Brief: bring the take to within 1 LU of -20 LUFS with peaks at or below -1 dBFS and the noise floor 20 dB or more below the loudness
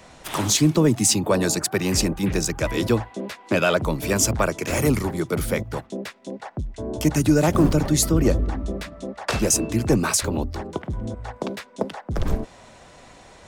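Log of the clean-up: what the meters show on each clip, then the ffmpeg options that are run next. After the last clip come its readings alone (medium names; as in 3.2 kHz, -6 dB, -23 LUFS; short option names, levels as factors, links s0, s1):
loudness -22.5 LUFS; peak level -8.0 dBFS; loudness target -20.0 LUFS
-> -af "volume=1.33"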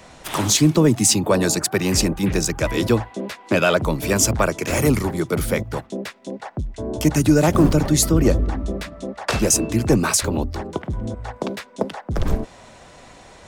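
loudness -20.0 LUFS; peak level -5.5 dBFS; noise floor -46 dBFS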